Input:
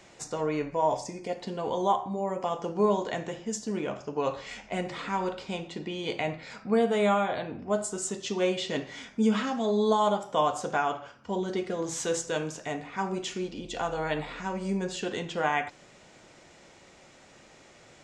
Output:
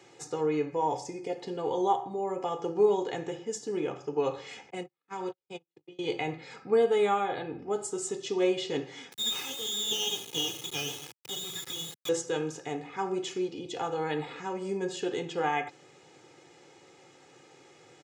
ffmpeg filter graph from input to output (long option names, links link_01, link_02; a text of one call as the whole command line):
ffmpeg -i in.wav -filter_complex "[0:a]asettb=1/sr,asplit=3[link_01][link_02][link_03];[link_01]atrim=end=4.704[link_04];[link_02]atrim=start=4.7:end=5.99,asetpts=PTS-STARTPTS,afade=type=in:duration=0.004:curve=qsin,afade=type=out:start_time=1.286:duration=0.004:curve=qsin,agate=range=-53dB:threshold=-32dB:ratio=16:release=100:detection=peak,acrossover=split=130|3000[link_05][link_06][link_07];[link_06]acompressor=threshold=-33dB:ratio=2.5:attack=3.2:release=140:knee=2.83:detection=peak[link_08];[link_05][link_08][link_07]amix=inputs=3:normalize=0[link_09];[link_03]atrim=start=5.986[link_10];[link_04][link_09]acrossfade=duration=0.004:curve1=hsin:curve2=qsin[link_11];[link_11][link_10]acrossfade=duration=0.004:curve1=qsin:curve2=hsin,asettb=1/sr,asplit=3[link_12][link_13][link_14];[link_12]atrim=end=9.124[link_15];[link_13]atrim=start=9.12:end=12.09,asetpts=PTS-STARTPTS,afade=type=in:duration=0.004:curve=qsin,afade=type=out:start_time=2.966:duration=0.004:curve=qsin,acompressor=mode=upward:threshold=-29dB:ratio=2.5:attack=3.2:release=140:knee=2.83:detection=peak,lowpass=frequency=3300:width_type=q:width=0.5098,lowpass=frequency=3300:width_type=q:width=0.6013,lowpass=frequency=3300:width_type=q:width=0.9,lowpass=frequency=3300:width_type=q:width=2.563,afreqshift=-3900,acrusher=bits=3:dc=4:mix=0:aa=0.000001[link_16];[link_14]atrim=start=12.086[link_17];[link_15][link_16]acrossfade=duration=0.004:curve1=hsin:curve2=qsin[link_18];[link_18][link_17]acrossfade=duration=0.004:curve1=qsin:curve2=hsin,highpass=frequency=140:width=0.5412,highpass=frequency=140:width=1.3066,lowshelf=frequency=310:gain=9,aecho=1:1:2.4:0.77,volume=-5dB" out.wav